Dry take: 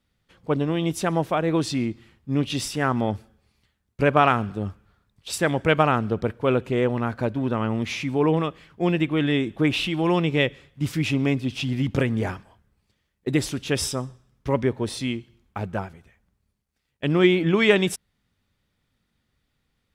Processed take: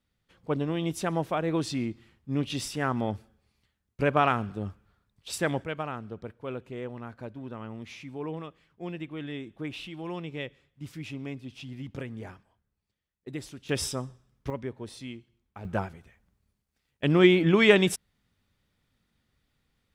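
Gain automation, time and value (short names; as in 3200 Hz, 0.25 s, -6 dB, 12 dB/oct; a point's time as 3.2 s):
-5.5 dB
from 5.64 s -15 dB
from 13.69 s -5 dB
from 14.5 s -13 dB
from 15.65 s -1 dB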